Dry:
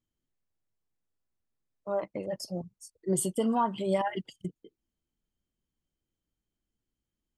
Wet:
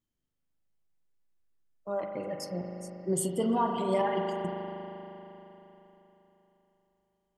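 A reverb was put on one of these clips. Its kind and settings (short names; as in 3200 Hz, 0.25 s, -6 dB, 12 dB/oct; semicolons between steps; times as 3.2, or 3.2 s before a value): spring tank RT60 3.7 s, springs 39 ms, chirp 75 ms, DRR 1.5 dB; gain -1.5 dB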